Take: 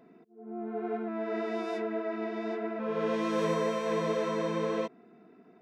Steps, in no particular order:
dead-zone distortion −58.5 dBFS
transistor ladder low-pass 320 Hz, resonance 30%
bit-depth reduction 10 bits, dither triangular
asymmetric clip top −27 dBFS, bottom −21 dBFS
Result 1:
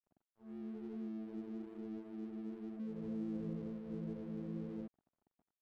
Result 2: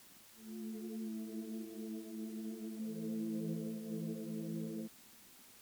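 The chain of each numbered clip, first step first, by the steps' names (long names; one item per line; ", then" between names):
bit-depth reduction, then asymmetric clip, then transistor ladder low-pass, then dead-zone distortion
dead-zone distortion, then transistor ladder low-pass, then bit-depth reduction, then asymmetric clip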